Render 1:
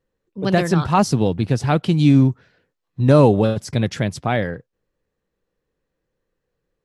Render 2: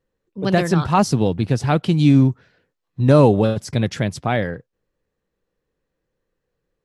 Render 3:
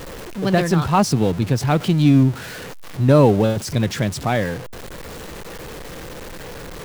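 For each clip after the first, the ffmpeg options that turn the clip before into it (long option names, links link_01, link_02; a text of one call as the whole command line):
ffmpeg -i in.wav -af anull out.wav
ffmpeg -i in.wav -af "aeval=exprs='val(0)+0.5*0.0473*sgn(val(0))':channel_layout=same,volume=-1dB" out.wav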